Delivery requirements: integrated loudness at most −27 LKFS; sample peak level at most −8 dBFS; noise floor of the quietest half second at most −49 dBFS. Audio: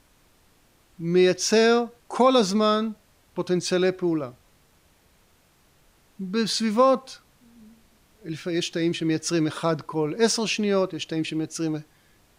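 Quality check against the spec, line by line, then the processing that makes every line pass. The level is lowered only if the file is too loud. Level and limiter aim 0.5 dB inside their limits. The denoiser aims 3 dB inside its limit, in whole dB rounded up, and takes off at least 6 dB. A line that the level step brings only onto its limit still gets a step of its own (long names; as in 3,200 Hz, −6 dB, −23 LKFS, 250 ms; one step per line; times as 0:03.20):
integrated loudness −23.5 LKFS: out of spec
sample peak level −7.0 dBFS: out of spec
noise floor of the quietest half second −61 dBFS: in spec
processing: level −4 dB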